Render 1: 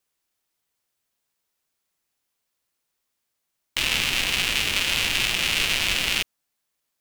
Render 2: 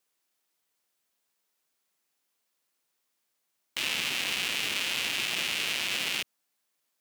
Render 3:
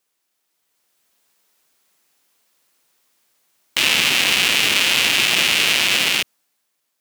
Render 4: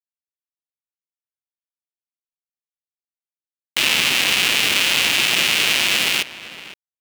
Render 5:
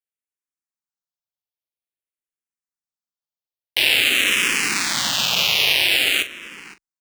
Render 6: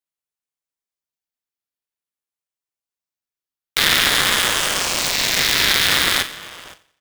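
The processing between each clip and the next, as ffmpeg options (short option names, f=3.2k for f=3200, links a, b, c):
-af "highpass=180,alimiter=limit=-15dB:level=0:latency=1:release=60"
-af "dynaudnorm=f=100:g=17:m=9dB,volume=5dB"
-filter_complex "[0:a]acrusher=bits=4:mix=0:aa=0.000001,asplit=2[a][b];[b]adelay=513.1,volume=-14dB,highshelf=f=4k:g=-11.5[c];[a][c]amix=inputs=2:normalize=0,volume=-1dB"
-filter_complex "[0:a]asplit=2[a][b];[b]adelay=41,volume=-12dB[c];[a][c]amix=inputs=2:normalize=0,asplit=2[d][e];[e]afreqshift=-0.49[f];[d][f]amix=inputs=2:normalize=1,volume=1.5dB"
-af "aecho=1:1:89|178|267|356:0.126|0.0541|0.0233|0.01,aeval=exprs='val(0)*sgn(sin(2*PI*820*n/s))':c=same,volume=1dB"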